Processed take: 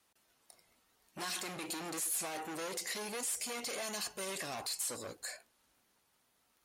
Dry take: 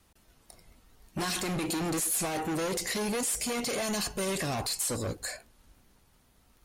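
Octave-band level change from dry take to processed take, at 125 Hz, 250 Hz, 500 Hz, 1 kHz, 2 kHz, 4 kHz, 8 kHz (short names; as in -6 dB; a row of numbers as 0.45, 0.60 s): -18.0, -14.0, -10.0, -7.5, -6.5, -6.0, -6.0 dB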